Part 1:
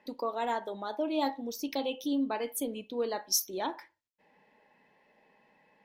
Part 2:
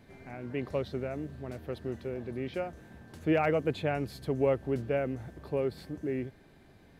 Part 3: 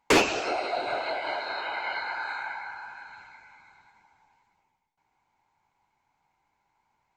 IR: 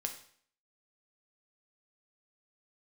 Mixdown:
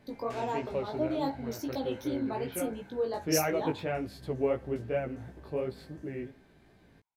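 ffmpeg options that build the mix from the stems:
-filter_complex "[0:a]equalizer=f=2400:w=0.73:g=-9,volume=1.41[s0];[1:a]volume=0.794,asplit=2[s1][s2];[s2]volume=0.398[s3];[2:a]asoftclip=type=tanh:threshold=0.106,adelay=200,volume=0.106[s4];[3:a]atrim=start_sample=2205[s5];[s3][s5]afir=irnorm=-1:irlink=0[s6];[s0][s1][s4][s6]amix=inputs=4:normalize=0,highshelf=f=11000:g=-3.5,flanger=delay=15.5:depth=3.7:speed=2.8"

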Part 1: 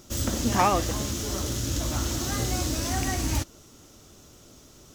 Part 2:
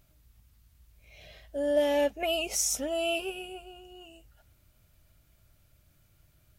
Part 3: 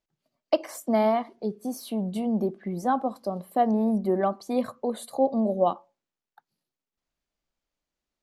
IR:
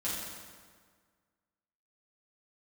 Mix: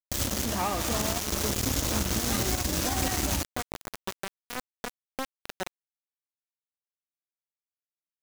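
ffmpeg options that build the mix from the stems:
-filter_complex "[0:a]asoftclip=type=hard:threshold=0.178,volume=1.12,asplit=2[s0][s1];[s1]volume=0.251[s2];[1:a]lowshelf=f=430:g=2.5,adelay=950,volume=0.141[s3];[2:a]lowpass=f=3300:p=1,acompressor=threshold=0.0501:ratio=8,volume=0.891[s4];[3:a]atrim=start_sample=2205[s5];[s2][s5]afir=irnorm=-1:irlink=0[s6];[s0][s3][s4][s6]amix=inputs=4:normalize=0,acrusher=bits=3:mix=0:aa=0.000001,alimiter=limit=0.0891:level=0:latency=1:release=87"

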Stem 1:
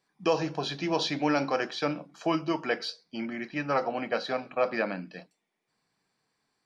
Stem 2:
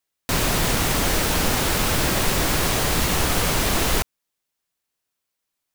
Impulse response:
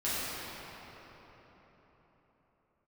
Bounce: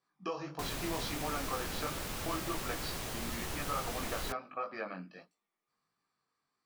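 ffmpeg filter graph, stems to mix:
-filter_complex "[0:a]equalizer=f=1200:t=o:w=0.25:g=14,acompressor=threshold=0.0562:ratio=6,flanger=delay=18:depth=4.2:speed=1.5,volume=0.501[s0];[1:a]adelay=300,volume=0.119[s1];[s0][s1]amix=inputs=2:normalize=0"

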